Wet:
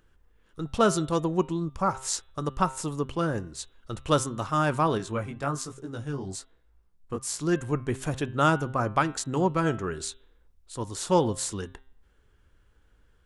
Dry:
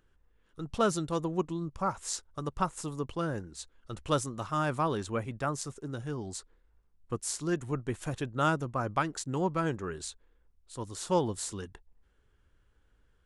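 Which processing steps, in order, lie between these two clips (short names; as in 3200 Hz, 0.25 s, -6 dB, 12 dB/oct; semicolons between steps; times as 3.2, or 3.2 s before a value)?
de-hum 132 Hz, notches 30; 4.98–7.38 chorus 1.2 Hz, delay 16.5 ms, depth 5.2 ms; gain +5.5 dB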